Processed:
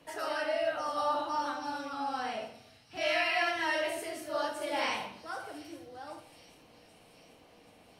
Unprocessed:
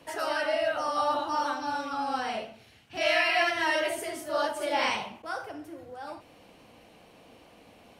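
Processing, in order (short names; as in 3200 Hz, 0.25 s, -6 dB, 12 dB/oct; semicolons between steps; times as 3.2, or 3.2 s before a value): thin delay 0.781 s, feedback 60%, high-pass 5000 Hz, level -11.5 dB; shoebox room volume 170 m³, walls mixed, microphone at 0.48 m; gain -5.5 dB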